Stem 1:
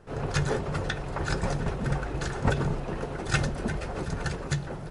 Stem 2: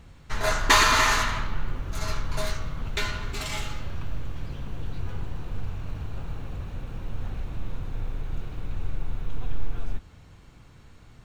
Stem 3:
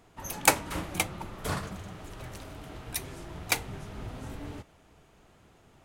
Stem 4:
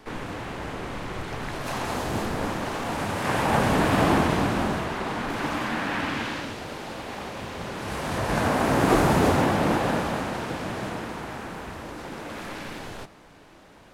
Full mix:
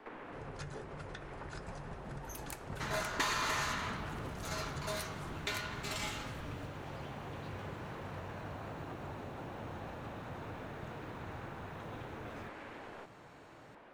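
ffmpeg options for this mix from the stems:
-filter_complex "[0:a]adelay=250,volume=-7.5dB[a];[1:a]highpass=130,acompressor=threshold=-29dB:ratio=3,adelay=2500,volume=-5.5dB[b];[2:a]acompressor=threshold=-35dB:ratio=6,adelay=2050,volume=2dB[c];[3:a]acrossover=split=250 2700:gain=0.2 1 0.126[d][e][f];[d][e][f]amix=inputs=3:normalize=0,acompressor=threshold=-36dB:ratio=6,volume=-3.5dB[g];[a][c][g]amix=inputs=3:normalize=0,acompressor=threshold=-47dB:ratio=2.5,volume=0dB[h];[b][h]amix=inputs=2:normalize=0"

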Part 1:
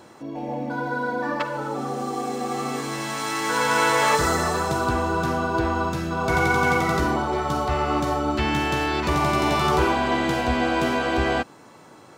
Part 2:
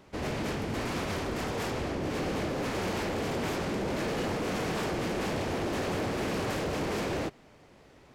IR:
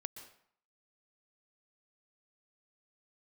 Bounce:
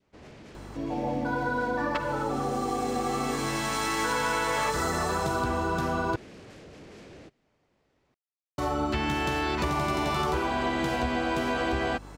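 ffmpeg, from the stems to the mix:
-filter_complex "[0:a]acompressor=threshold=-25dB:ratio=6,aeval=exprs='val(0)+0.00562*(sin(2*PI*50*n/s)+sin(2*PI*2*50*n/s)/2+sin(2*PI*3*50*n/s)/3+sin(2*PI*4*50*n/s)/4+sin(2*PI*5*50*n/s)/5)':c=same,adelay=550,volume=0.5dB,asplit=3[a][b][c];[a]atrim=end=6.16,asetpts=PTS-STARTPTS,afade=t=out:st=6.156:d=0.004:c=hsin[d];[b]atrim=start=6.16:end=8.58,asetpts=PTS-STARTPTS,volume=0[e];[c]atrim=start=8.58,asetpts=PTS-STARTPTS,afade=t=in:d=0.004:c=hsin[f];[d][e][f]concat=n=3:v=0:a=1[g];[1:a]lowpass=8.7k,adynamicequalizer=threshold=0.00398:dfrequency=960:dqfactor=1.2:tfrequency=960:tqfactor=1.2:attack=5:release=100:ratio=0.375:range=3:mode=cutabove:tftype=bell,volume=-15dB[h];[g][h]amix=inputs=2:normalize=0"

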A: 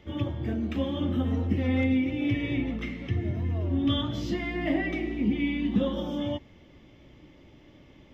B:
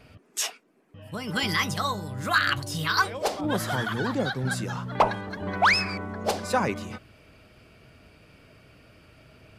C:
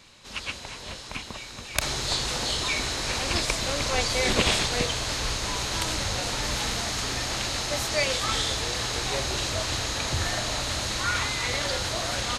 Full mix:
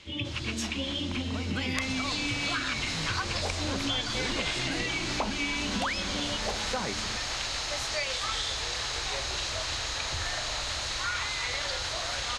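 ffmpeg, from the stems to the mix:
-filter_complex "[0:a]highshelf=f=1.9k:t=q:w=3:g=10.5,volume=-5dB[a];[1:a]adelay=200,volume=-5dB[b];[2:a]equalizer=f=200:t=o:w=2.5:g=-12,volume=-1dB[c];[a][b][c]amix=inputs=3:normalize=0,lowpass=6.9k,acompressor=threshold=-27dB:ratio=6"

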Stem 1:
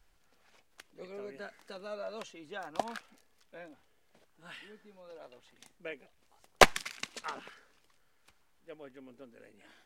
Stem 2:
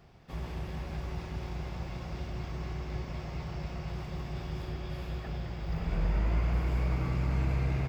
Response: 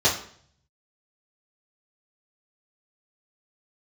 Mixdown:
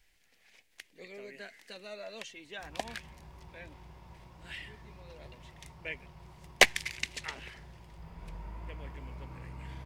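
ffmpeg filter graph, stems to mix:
-filter_complex "[0:a]highshelf=f=1.6k:t=q:w=3:g=6,alimiter=limit=-0.5dB:level=0:latency=1:release=398,volume=-3dB[a];[1:a]equalizer=f=960:w=6.7:g=13.5,adelay=2300,volume=-15.5dB[b];[a][b]amix=inputs=2:normalize=0"

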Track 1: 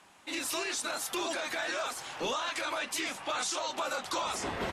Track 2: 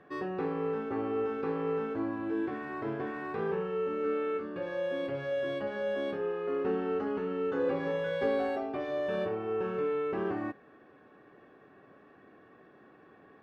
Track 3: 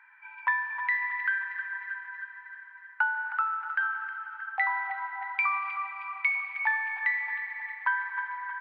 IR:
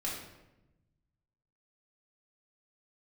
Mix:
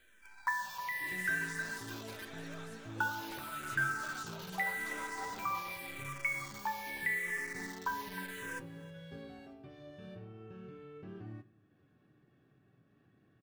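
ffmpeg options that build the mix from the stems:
-filter_complex "[0:a]adelay=750,volume=-14dB,asplit=2[a][b];[b]volume=-6dB[c];[1:a]equalizer=f=125:t=o:w=1:g=11,equalizer=f=250:t=o:w=1:g=-4,equalizer=f=500:t=o:w=1:g=-11,equalizer=f=1k:t=o:w=1:g=-12,equalizer=f=2k:t=o:w=1:g=-7,acompressor=mode=upward:threshold=-52dB:ratio=2.5,adelay=900,volume=-5.5dB,asplit=2[d][e];[e]volume=-18.5dB[f];[2:a]bass=f=250:g=14,treble=f=4k:g=-8,acrusher=bits=7:dc=4:mix=0:aa=0.000001,asplit=2[g][h];[h]afreqshift=-0.84[i];[g][i]amix=inputs=2:normalize=1,volume=0dB,asplit=2[j][k];[k]volume=-22dB[l];[3:a]atrim=start_sample=2205[m];[f][m]afir=irnorm=-1:irlink=0[n];[c][l]amix=inputs=2:normalize=0,aecho=0:1:315|630|945|1260|1575|1890:1|0.43|0.185|0.0795|0.0342|0.0147[o];[a][d][j][n][o]amix=inputs=5:normalize=0,flanger=delay=8.1:depth=9.8:regen=74:speed=0.35:shape=triangular"

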